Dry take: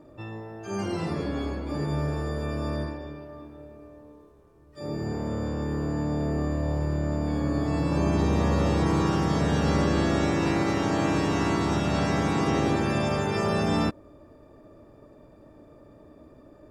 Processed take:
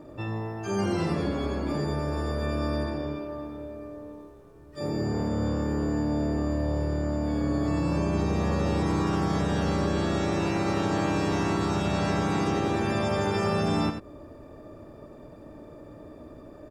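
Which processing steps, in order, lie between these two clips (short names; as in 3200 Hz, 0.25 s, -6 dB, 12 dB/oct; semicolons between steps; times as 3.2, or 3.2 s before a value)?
compressor 4:1, threshold -30 dBFS, peak gain reduction 10 dB; on a send: echo 91 ms -7.5 dB; on the sum: gain +5 dB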